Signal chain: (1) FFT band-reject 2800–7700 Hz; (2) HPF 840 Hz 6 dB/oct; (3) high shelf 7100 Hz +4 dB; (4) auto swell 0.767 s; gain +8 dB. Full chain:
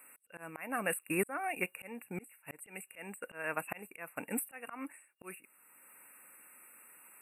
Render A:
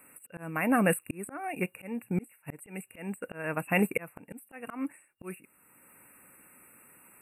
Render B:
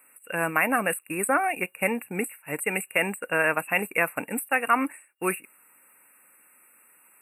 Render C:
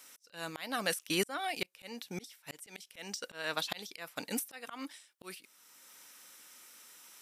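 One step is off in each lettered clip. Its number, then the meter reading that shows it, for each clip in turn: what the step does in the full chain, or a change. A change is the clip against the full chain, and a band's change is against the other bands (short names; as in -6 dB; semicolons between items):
2, 125 Hz band +8.0 dB; 4, crest factor change -3.0 dB; 1, 8 kHz band +2.0 dB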